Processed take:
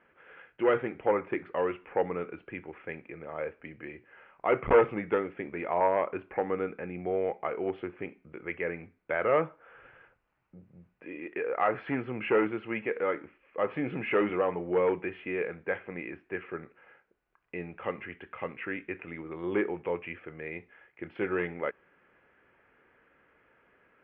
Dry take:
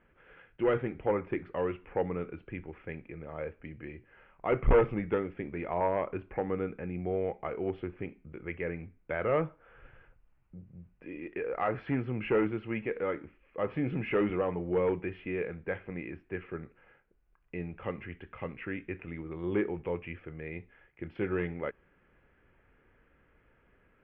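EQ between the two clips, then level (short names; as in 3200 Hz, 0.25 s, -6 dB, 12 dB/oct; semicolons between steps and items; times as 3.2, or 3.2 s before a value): HPF 570 Hz 6 dB/oct; air absorption 210 m; +7.0 dB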